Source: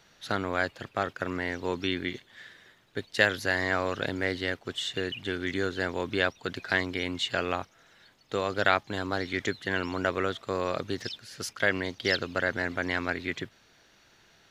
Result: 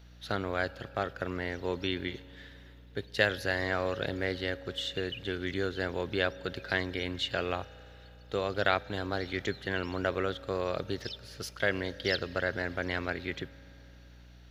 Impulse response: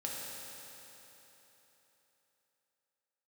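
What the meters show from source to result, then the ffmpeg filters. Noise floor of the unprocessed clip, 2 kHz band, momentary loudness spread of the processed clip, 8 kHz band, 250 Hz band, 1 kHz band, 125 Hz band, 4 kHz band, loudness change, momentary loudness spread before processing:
-62 dBFS, -4.5 dB, 11 LU, -6.5 dB, -3.0 dB, -4.0 dB, 0.0 dB, -2.5 dB, -3.0 dB, 10 LU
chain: -filter_complex "[0:a]aeval=exprs='val(0)+0.00251*(sin(2*PI*60*n/s)+sin(2*PI*2*60*n/s)/2+sin(2*PI*3*60*n/s)/3+sin(2*PI*4*60*n/s)/4+sin(2*PI*5*60*n/s)/5)':c=same,equalizer=f=250:t=o:w=1:g=-5,equalizer=f=1k:t=o:w=1:g=-5,equalizer=f=2k:t=o:w=1:g=-4,equalizer=f=8k:t=o:w=1:g=-10,asplit=2[a][b];[1:a]atrim=start_sample=2205[c];[b][c]afir=irnorm=-1:irlink=0,volume=-19dB[d];[a][d]amix=inputs=2:normalize=0"

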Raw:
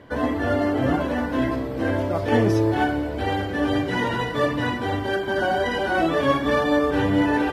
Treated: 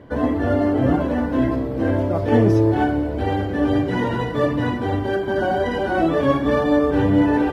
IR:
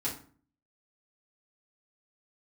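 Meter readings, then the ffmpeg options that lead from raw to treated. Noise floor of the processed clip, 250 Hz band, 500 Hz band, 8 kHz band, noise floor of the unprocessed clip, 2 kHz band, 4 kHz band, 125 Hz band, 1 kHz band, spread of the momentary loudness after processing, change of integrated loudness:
-25 dBFS, +4.0 dB, +2.5 dB, n/a, -29 dBFS, -2.5 dB, -4.0 dB, +5.0 dB, +0.5 dB, 6 LU, +3.0 dB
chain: -af "tiltshelf=f=930:g=5"

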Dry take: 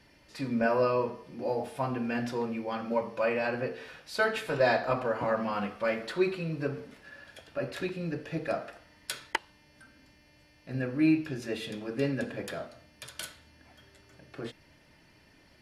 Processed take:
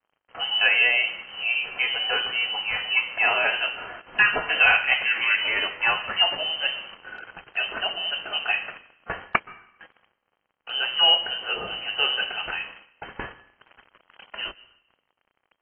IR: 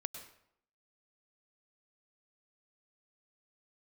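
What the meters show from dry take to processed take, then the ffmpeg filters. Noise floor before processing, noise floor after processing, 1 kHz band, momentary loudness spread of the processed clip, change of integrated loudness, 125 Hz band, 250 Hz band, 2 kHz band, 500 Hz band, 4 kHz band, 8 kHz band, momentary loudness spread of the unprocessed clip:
-61 dBFS, -78 dBFS, +5.0 dB, 19 LU, +9.0 dB, -12.5 dB, -15.5 dB, +14.5 dB, -5.5 dB, +22.0 dB, under -30 dB, 17 LU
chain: -filter_complex "[0:a]acrusher=bits=7:mix=0:aa=0.5,crystalizer=i=6.5:c=0,asplit=2[a][b];[1:a]atrim=start_sample=2205,asetrate=35280,aresample=44100[c];[b][c]afir=irnorm=-1:irlink=0,volume=-10.5dB[d];[a][d]amix=inputs=2:normalize=0,lowpass=f=2.7k:t=q:w=0.5098,lowpass=f=2.7k:t=q:w=0.6013,lowpass=f=2.7k:t=q:w=0.9,lowpass=f=2.7k:t=q:w=2.563,afreqshift=-3200,volume=2.5dB" -ar 32000 -c:a aac -b:a 24k

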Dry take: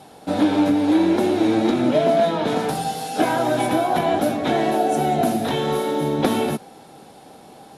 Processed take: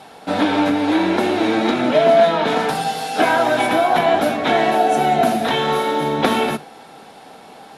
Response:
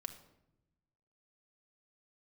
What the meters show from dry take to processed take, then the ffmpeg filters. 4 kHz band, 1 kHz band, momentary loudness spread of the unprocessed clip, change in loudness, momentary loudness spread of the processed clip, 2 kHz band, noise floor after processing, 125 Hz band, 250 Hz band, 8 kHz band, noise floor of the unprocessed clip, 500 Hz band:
+6.0 dB, +5.0 dB, 6 LU, +3.0 dB, 6 LU, +8.5 dB, -42 dBFS, -1.5 dB, -0.5 dB, +0.5 dB, -46 dBFS, +3.5 dB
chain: -filter_complex "[0:a]equalizer=f=1.8k:w=0.35:g=10.5,asplit=2[a][b];[1:a]atrim=start_sample=2205,atrim=end_sample=3969[c];[b][c]afir=irnorm=-1:irlink=0,volume=1dB[d];[a][d]amix=inputs=2:normalize=0,volume=-7dB"

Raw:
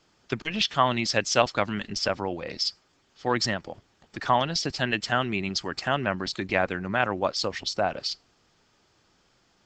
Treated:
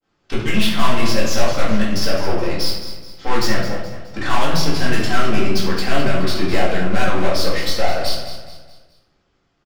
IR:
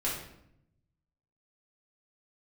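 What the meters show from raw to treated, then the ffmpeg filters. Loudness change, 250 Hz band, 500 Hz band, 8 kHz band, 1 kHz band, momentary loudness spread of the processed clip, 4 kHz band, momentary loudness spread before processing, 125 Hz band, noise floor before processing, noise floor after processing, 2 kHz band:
+6.0 dB, +10.0 dB, +6.5 dB, +5.5 dB, +4.0 dB, 9 LU, +5.5 dB, 9 LU, +10.0 dB, -66 dBFS, -65 dBFS, +5.0 dB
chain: -filter_complex "[0:a]agate=range=-33dB:threshold=-55dB:ratio=3:detection=peak,adynamicequalizer=threshold=0.0158:dfrequency=4800:dqfactor=0.71:tfrequency=4800:tqfactor=0.71:attack=5:release=100:ratio=0.375:range=2:mode=cutabove:tftype=bell,asplit=2[a][b];[b]adynamicsmooth=sensitivity=6:basefreq=5.4k,volume=0.5dB[c];[a][c]amix=inputs=2:normalize=0,aeval=exprs='(tanh(17.8*val(0)+0.5)-tanh(0.5))/17.8':c=same,aecho=1:1:211|422|633|844:0.266|0.106|0.0426|0.017[d];[1:a]atrim=start_sample=2205[e];[d][e]afir=irnorm=-1:irlink=0,volume=2.5dB"

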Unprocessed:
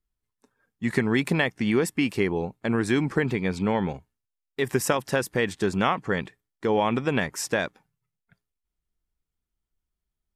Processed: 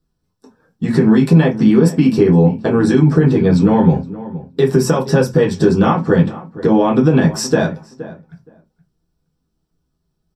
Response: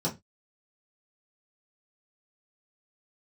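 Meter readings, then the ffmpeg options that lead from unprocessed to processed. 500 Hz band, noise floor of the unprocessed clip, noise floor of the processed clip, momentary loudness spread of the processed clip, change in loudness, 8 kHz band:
+11.5 dB, -85 dBFS, -71 dBFS, 12 LU, +12.5 dB, +5.5 dB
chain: -filter_complex "[0:a]acompressor=threshold=-31dB:ratio=2,asplit=2[a][b];[b]adelay=470,lowpass=f=1.6k:p=1,volume=-16dB,asplit=2[c][d];[d]adelay=470,lowpass=f=1.6k:p=1,volume=0.16[e];[a][c][e]amix=inputs=3:normalize=0[f];[1:a]atrim=start_sample=2205[g];[f][g]afir=irnorm=-1:irlink=0,alimiter=level_in=7dB:limit=-1dB:release=50:level=0:latency=1,volume=-1dB"

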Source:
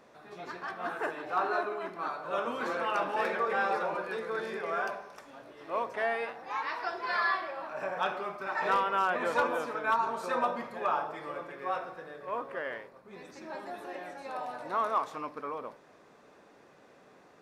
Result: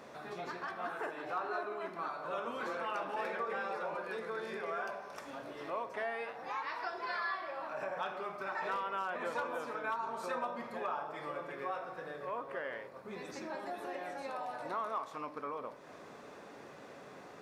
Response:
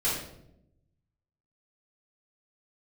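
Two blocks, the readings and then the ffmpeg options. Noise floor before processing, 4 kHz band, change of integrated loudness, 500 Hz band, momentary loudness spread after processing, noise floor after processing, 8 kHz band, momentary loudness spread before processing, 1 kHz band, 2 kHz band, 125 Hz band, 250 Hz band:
-59 dBFS, -6.0 dB, -7.0 dB, -5.5 dB, 9 LU, -52 dBFS, n/a, 15 LU, -6.5 dB, -6.5 dB, -3.5 dB, -4.5 dB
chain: -filter_complex "[0:a]highpass=43,acompressor=threshold=-49dB:ratio=2.5,asplit=2[a][b];[1:a]atrim=start_sample=2205,asetrate=74970,aresample=44100[c];[b][c]afir=irnorm=-1:irlink=0,volume=-17.5dB[d];[a][d]amix=inputs=2:normalize=0,volume=6dB"

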